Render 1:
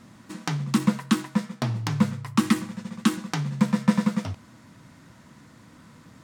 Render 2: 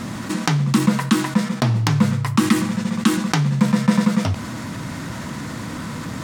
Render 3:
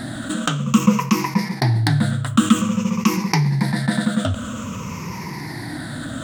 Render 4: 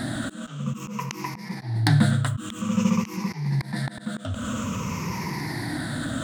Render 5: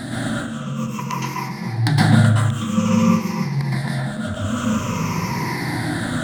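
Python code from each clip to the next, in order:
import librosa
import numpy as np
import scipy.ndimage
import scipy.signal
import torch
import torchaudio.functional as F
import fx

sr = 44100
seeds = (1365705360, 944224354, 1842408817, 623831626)

y1 = fx.env_flatten(x, sr, amount_pct=50)
y1 = y1 * 10.0 ** (3.0 / 20.0)
y2 = fx.spec_ripple(y1, sr, per_octave=0.8, drift_hz=-0.51, depth_db=16)
y2 = y2 * 10.0 ** (-2.5 / 20.0)
y3 = fx.auto_swell(y2, sr, attack_ms=328.0)
y4 = fx.rev_plate(y3, sr, seeds[0], rt60_s=0.63, hf_ratio=0.5, predelay_ms=105, drr_db=-6.5)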